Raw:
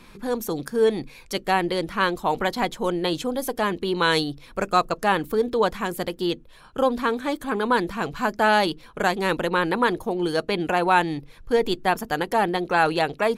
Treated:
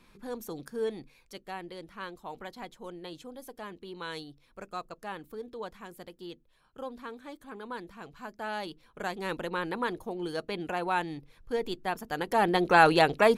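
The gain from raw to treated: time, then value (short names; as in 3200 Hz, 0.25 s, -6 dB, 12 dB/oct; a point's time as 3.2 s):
0.8 s -12 dB
1.44 s -18.5 dB
8.33 s -18.5 dB
9.32 s -10.5 dB
12.03 s -10.5 dB
12.63 s +0.5 dB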